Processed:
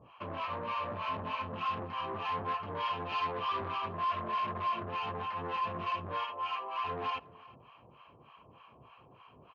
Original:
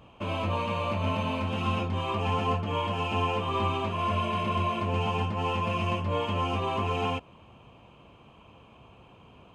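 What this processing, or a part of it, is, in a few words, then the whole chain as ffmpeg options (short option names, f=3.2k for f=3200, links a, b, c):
guitar amplifier with harmonic tremolo: -filter_complex "[0:a]asettb=1/sr,asplit=3[a][b][c];[a]atrim=end=6.244[d];[b]atrim=start=6.24:end=6.84,asetpts=PTS-STARTPTS,afade=t=in:d=0.004:c=qsin,afade=t=out:st=0.596:d=0.004:c=qsin,highpass=890[e];[c]atrim=start=6.836[f];[d][e]acrossfade=d=0.004:c1=hsin:c2=qsin[g];[g][f]acrossfade=d=0.004:c1=qsin:c2=hsin,bandreject=f=3.6k:w=8.9,acrossover=split=770[h][i];[h]aeval=exprs='val(0)*(1-1/2+1/2*cos(2*PI*3.3*n/s))':c=same[j];[i]aeval=exprs='val(0)*(1-1/2-1/2*cos(2*PI*3.3*n/s))':c=same[k];[j][k]amix=inputs=2:normalize=0,asoftclip=type=tanh:threshold=-34dB,highpass=87,equalizer=f=89:t=q:w=4:g=-5,equalizer=f=200:t=q:w=4:g=-6,equalizer=f=290:t=q:w=4:g=-3,equalizer=f=1.1k:t=q:w=4:g=8,equalizer=f=1.7k:t=q:w=4:g=4,lowpass=f=4.3k:w=0.5412,lowpass=f=4.3k:w=1.3066,asettb=1/sr,asplit=3[l][m][n];[l]atrim=end=2.804[o];[m]atrim=start=2.8:end=3.68,asetpts=PTS-STARTPTS,afade=t=in:d=0.004:c=qsin,afade=t=out:st=0.876:d=0.004:c=qsin,equalizer=f=4.4k:t=o:w=1.6:g=4.5[p];[n]atrim=start=3.676[q];[o][p]acrossfade=d=0.004:c1=hsin:c2=qsin[r];[r][q]acrossfade=d=0.004:c1=qsin:c2=hsin,asplit=2[s][t];[t]adelay=361.5,volume=-21dB,highshelf=f=4k:g=-8.13[u];[s][u]amix=inputs=2:normalize=0"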